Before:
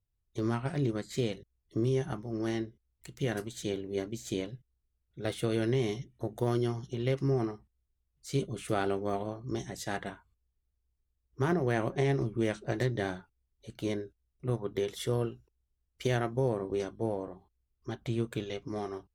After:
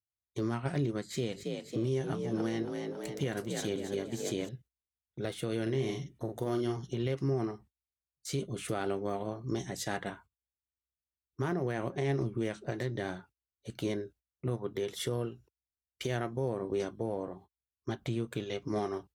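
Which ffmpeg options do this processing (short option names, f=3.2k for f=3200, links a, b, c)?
-filter_complex "[0:a]asettb=1/sr,asplit=3[a][b][c];[a]atrim=end=1.014[d];[b]atrim=start=1.01:end=4.49,asetpts=PTS-STARTPTS,afade=t=in:d=0.004:c=qsin,afade=t=out:st=3.476:d=0.004:c=qsin,asplit=8[e][f][g][h][i][j][k][l];[f]adelay=275,afreqshift=46,volume=-8.5dB[m];[g]adelay=550,afreqshift=92,volume=-13.7dB[n];[h]adelay=825,afreqshift=138,volume=-18.9dB[o];[i]adelay=1100,afreqshift=184,volume=-24.1dB[p];[j]adelay=1375,afreqshift=230,volume=-29.3dB[q];[k]adelay=1650,afreqshift=276,volume=-34.5dB[r];[l]adelay=1925,afreqshift=322,volume=-39.7dB[s];[e][m][n][o][p][q][r][s]amix=inputs=8:normalize=0,atrim=end_sample=153468[t];[c]atrim=start=4.486[u];[d][t]acrossfade=d=0.004:c1=hsin:c2=qsin[v];[v][u]acrossfade=d=0.004:c1=qsin:c2=hsin,asettb=1/sr,asplit=3[w][x][y];[w]atrim=end=5.624[z];[x]atrim=start=5.62:end=6.77,asetpts=PTS-STARTPTS,afade=t=in:d=0.004:c=qsin,afade=t=out:st=1.146:d=0.004:c=qsin,asplit=2[aa][ab];[ab]adelay=45,volume=-5.5dB[ac];[aa][ac]amix=inputs=2:normalize=0,atrim=end_sample=50715[ad];[y]atrim=start=6.766[ae];[z][ad]acrossfade=d=0.004:c1=hsin:c2=qsin[af];[af][ae]acrossfade=d=0.004:c1=qsin:c2=hsin,agate=range=-21dB:threshold=-55dB:ratio=16:detection=peak,alimiter=level_in=2.5dB:limit=-24dB:level=0:latency=1:release=365,volume=-2.5dB,highpass=79,volume=4dB"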